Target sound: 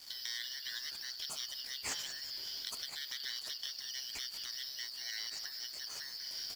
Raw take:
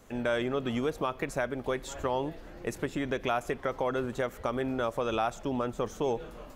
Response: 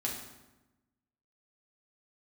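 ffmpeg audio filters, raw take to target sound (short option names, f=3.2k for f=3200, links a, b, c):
-filter_complex "[0:a]afftfilt=real='real(if(lt(b,272),68*(eq(floor(b/68),0)*3+eq(floor(b/68),1)*2+eq(floor(b/68),2)*1+eq(floor(b/68),3)*0)+mod(b,68),b),0)':imag='imag(if(lt(b,272),68*(eq(floor(b/68),0)*3+eq(floor(b/68),1)*2+eq(floor(b/68),2)*1+eq(floor(b/68),3)*0)+mod(b,68),b),0)':win_size=2048:overlap=0.75,bandreject=f=500:w=12,bandreject=f=172:t=h:w=4,bandreject=f=344:t=h:w=4,bandreject=f=516:t=h:w=4,bandreject=f=688:t=h:w=4,bandreject=f=860:t=h:w=4,bandreject=f=1.032k:t=h:w=4,bandreject=f=1.204k:t=h:w=4,bandreject=f=1.376k:t=h:w=4,bandreject=f=1.548k:t=h:w=4,bandreject=f=1.72k:t=h:w=4,adynamicequalizer=threshold=0.00112:dfrequency=490:dqfactor=1.1:tfrequency=490:tqfactor=1.1:attack=5:release=100:ratio=0.375:range=2.5:mode=boostabove:tftype=bell,acompressor=threshold=-37dB:ratio=16,aeval=exprs='sgn(val(0))*max(abs(val(0))-0.00112,0)':c=same,asplit=6[a][b][c][d][e][f];[b]adelay=186,afreqshift=-91,volume=-13.5dB[g];[c]adelay=372,afreqshift=-182,volume=-19.7dB[h];[d]adelay=558,afreqshift=-273,volume=-25.9dB[i];[e]adelay=744,afreqshift=-364,volume=-32.1dB[j];[f]adelay=930,afreqshift=-455,volume=-38.3dB[k];[a][g][h][i][j][k]amix=inputs=6:normalize=0,afftfilt=real='re*lt(hypot(re,im),0.0158)':imag='im*lt(hypot(re,im),0.0158)':win_size=1024:overlap=0.75,volume=10dB"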